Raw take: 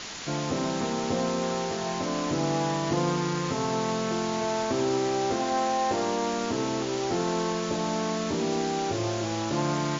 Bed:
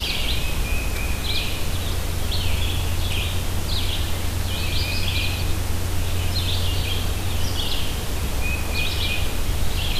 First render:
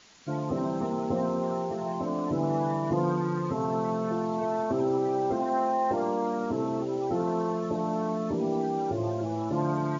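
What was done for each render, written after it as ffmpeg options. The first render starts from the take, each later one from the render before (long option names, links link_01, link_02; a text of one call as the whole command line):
ffmpeg -i in.wav -af "afftdn=noise_reduction=18:noise_floor=-30" out.wav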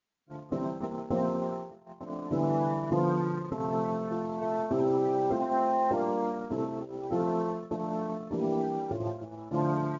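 ffmpeg -i in.wav -af "highshelf=frequency=3600:gain=-7.5,agate=range=-29dB:threshold=-28dB:ratio=16:detection=peak" out.wav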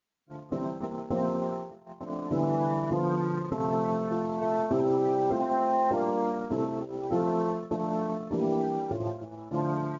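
ffmpeg -i in.wav -af "dynaudnorm=framelen=440:gausssize=7:maxgain=3dB,alimiter=limit=-17.5dB:level=0:latency=1:release=119" out.wav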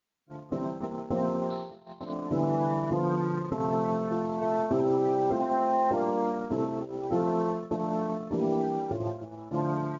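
ffmpeg -i in.wav -filter_complex "[0:a]asettb=1/sr,asplit=3[link_01][link_02][link_03];[link_01]atrim=end=1.504[link_04];[link_02]atrim=start=1.5:end=2.13,asetpts=PTS-STARTPTS,afade=type=in:duration=0.004:curve=qsin,afade=type=out:start_time=0.626:duration=0.004:curve=qsin,lowpass=frequency=4000:width_type=q:width=11[link_05];[link_03]atrim=start=2.126[link_06];[link_04][link_05]acrossfade=duration=0.004:curve1=hsin:curve2=qsin[link_07];[link_07][link_06]acrossfade=duration=0.004:curve1=qsin:curve2=hsin" out.wav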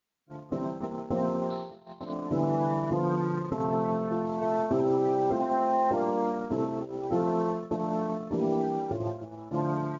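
ffmpeg -i in.wav -filter_complex "[0:a]asettb=1/sr,asplit=3[link_01][link_02][link_03];[link_01]atrim=end=3.634[link_04];[link_02]atrim=start=3.63:end=4.27,asetpts=PTS-STARTPTS,afade=type=in:duration=0.004:curve=qsin,afade=type=out:start_time=0.636:duration=0.004:curve=qsin,lowpass=frequency=3500:poles=1[link_05];[link_03]atrim=start=4.266[link_06];[link_04][link_05]acrossfade=duration=0.004:curve1=hsin:curve2=qsin[link_07];[link_07][link_06]acrossfade=duration=0.004:curve1=qsin:curve2=hsin" out.wav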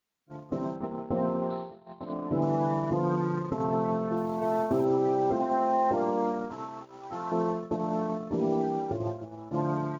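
ffmpeg -i in.wav -filter_complex "[0:a]asettb=1/sr,asplit=3[link_01][link_02][link_03];[link_01]atrim=end=0.764[link_04];[link_02]atrim=start=0.76:end=2.42,asetpts=PTS-STARTPTS,afade=type=in:duration=0.004:curve=qsin,afade=type=out:start_time=1.656:duration=0.004:curve=qsin,lowpass=2900[link_05];[link_03]atrim=start=2.416[link_06];[link_04][link_05]acrossfade=duration=0.004:curve1=hsin:curve2=qsin[link_07];[link_07][link_06]acrossfade=duration=0.004:curve1=qsin:curve2=hsin,asettb=1/sr,asplit=3[link_08][link_09][link_10];[link_08]atrim=end=4.174[link_11];[link_09]atrim=start=4.17:end=4.85,asetpts=PTS-STARTPTS,afade=type=in:duration=0.004:curve=qsin,afade=type=out:start_time=0.676:duration=0.004:curve=qsin,acrusher=bits=9:mode=log:mix=0:aa=0.000001[link_12];[link_10]atrim=start=4.846[link_13];[link_11][link_12]acrossfade=duration=0.004:curve1=hsin:curve2=qsin[link_14];[link_14][link_13]acrossfade=duration=0.004:curve1=qsin:curve2=hsin,asettb=1/sr,asplit=3[link_15][link_16][link_17];[link_15]atrim=end=6.504[link_18];[link_16]atrim=start=6.5:end=7.32,asetpts=PTS-STARTPTS,afade=type=in:duration=0.004:curve=qsin,afade=type=out:start_time=0.816:duration=0.004:curve=qsin,lowshelf=frequency=730:width_type=q:width=1.5:gain=-12[link_19];[link_17]atrim=start=7.316[link_20];[link_18][link_19]acrossfade=duration=0.004:curve1=hsin:curve2=qsin[link_21];[link_21][link_20]acrossfade=duration=0.004:curve1=qsin:curve2=hsin" out.wav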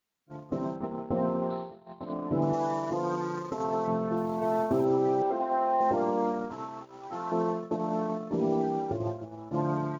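ffmpeg -i in.wav -filter_complex "[0:a]asettb=1/sr,asplit=3[link_01][link_02][link_03];[link_01]atrim=end=2.534[link_04];[link_02]atrim=start=2.53:end=3.88,asetpts=PTS-STARTPTS,afade=type=in:duration=0.004:curve=qsin,afade=type=out:start_time=1.346:duration=0.004:curve=qsin,bass=frequency=250:gain=-11,treble=frequency=4000:gain=10[link_05];[link_03]atrim=start=3.876[link_06];[link_04][link_05]acrossfade=duration=0.004:curve1=hsin:curve2=qsin[link_07];[link_07][link_06]acrossfade=duration=0.004:curve1=qsin:curve2=hsin,asettb=1/sr,asplit=3[link_08][link_09][link_10];[link_08]atrim=end=5.224[link_11];[link_09]atrim=start=5.22:end=5.81,asetpts=PTS-STARTPTS,afade=type=in:duration=0.004:curve=qsin,afade=type=out:start_time=0.586:duration=0.004:curve=qsin,highpass=380,lowpass=3600[link_12];[link_10]atrim=start=5.806[link_13];[link_11][link_12]acrossfade=duration=0.004:curve1=hsin:curve2=qsin[link_14];[link_14][link_13]acrossfade=duration=0.004:curve1=qsin:curve2=hsin,asettb=1/sr,asplit=3[link_15][link_16][link_17];[link_15]atrim=end=7.084[link_18];[link_16]atrim=start=7.08:end=8.34,asetpts=PTS-STARTPTS,afade=type=in:duration=0.004:curve=qsin,afade=type=out:start_time=1.256:duration=0.004:curve=qsin,highpass=140[link_19];[link_17]atrim=start=8.336[link_20];[link_18][link_19]acrossfade=duration=0.004:curve1=hsin:curve2=qsin[link_21];[link_21][link_20]acrossfade=duration=0.004:curve1=qsin:curve2=hsin" out.wav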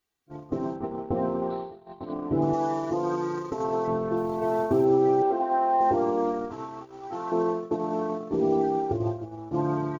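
ffmpeg -i in.wav -af "lowshelf=frequency=250:gain=5.5,aecho=1:1:2.6:0.54" out.wav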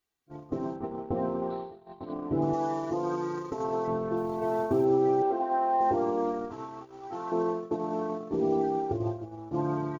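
ffmpeg -i in.wav -af "volume=-3dB" out.wav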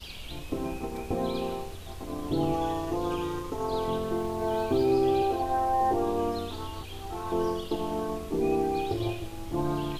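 ffmpeg -i in.wav -i bed.wav -filter_complex "[1:a]volume=-18dB[link_01];[0:a][link_01]amix=inputs=2:normalize=0" out.wav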